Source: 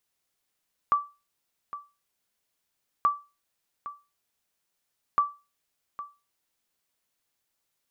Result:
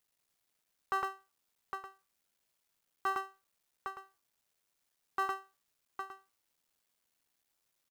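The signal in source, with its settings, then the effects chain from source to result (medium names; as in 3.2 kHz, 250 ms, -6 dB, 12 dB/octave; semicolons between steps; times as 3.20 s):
sonar ping 1.16 kHz, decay 0.28 s, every 2.13 s, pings 3, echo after 0.81 s, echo -15 dB -14.5 dBFS
cycle switcher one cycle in 3, muted; delay 109 ms -8 dB; peak limiter -25.5 dBFS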